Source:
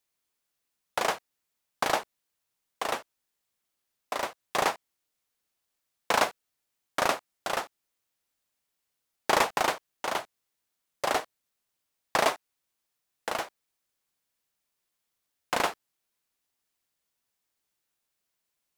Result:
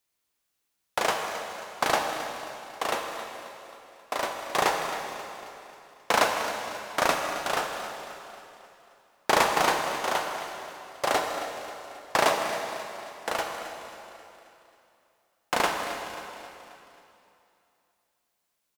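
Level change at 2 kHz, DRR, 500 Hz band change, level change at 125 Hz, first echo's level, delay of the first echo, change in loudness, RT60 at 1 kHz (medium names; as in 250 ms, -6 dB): +3.5 dB, 2.5 dB, +3.5 dB, +4.0 dB, -13.0 dB, 268 ms, +1.5 dB, 2.9 s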